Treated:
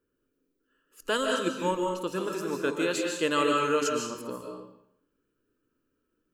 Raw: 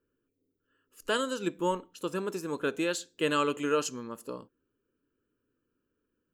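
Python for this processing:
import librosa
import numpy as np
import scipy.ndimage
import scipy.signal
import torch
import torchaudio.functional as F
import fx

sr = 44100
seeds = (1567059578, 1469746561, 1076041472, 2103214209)

y = fx.hum_notches(x, sr, base_hz=50, count=4)
y = fx.rev_freeverb(y, sr, rt60_s=0.73, hf_ratio=0.9, predelay_ms=105, drr_db=1.0)
y = F.gain(torch.from_numpy(y), 1.0).numpy()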